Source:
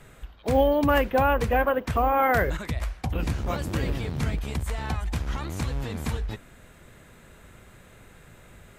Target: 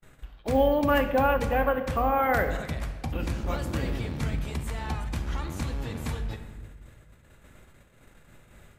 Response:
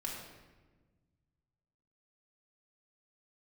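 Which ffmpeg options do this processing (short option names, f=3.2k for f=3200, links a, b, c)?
-filter_complex "[0:a]agate=range=-34dB:threshold=-49dB:ratio=16:detection=peak,asplit=2[a][b];[1:a]atrim=start_sample=2205[c];[b][c]afir=irnorm=-1:irlink=0,volume=-3.5dB[d];[a][d]amix=inputs=2:normalize=0,volume=-6dB"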